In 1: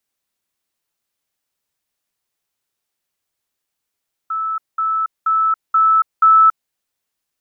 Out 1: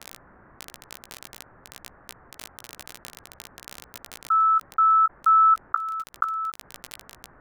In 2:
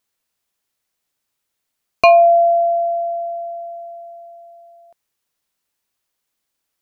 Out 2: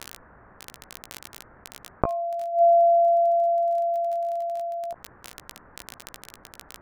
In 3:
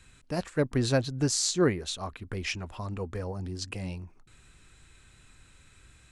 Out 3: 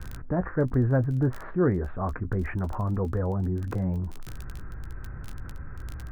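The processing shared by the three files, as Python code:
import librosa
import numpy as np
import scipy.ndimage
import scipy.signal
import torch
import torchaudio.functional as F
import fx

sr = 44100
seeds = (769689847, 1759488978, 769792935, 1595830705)

y = fx.gate_flip(x, sr, shuts_db=-10.0, range_db=-31)
y = scipy.signal.sosfilt(scipy.signal.butter(8, 1700.0, 'lowpass', fs=sr, output='sos'), y)
y = fx.low_shelf(y, sr, hz=170.0, db=7.5)
y = fx.dmg_crackle(y, sr, seeds[0], per_s=17.0, level_db=-40.0)
y = fx.doubler(y, sr, ms=16.0, db=-13.0)
y = fx.env_flatten(y, sr, amount_pct=50)
y = y * 10.0 ** (-2.0 / 20.0)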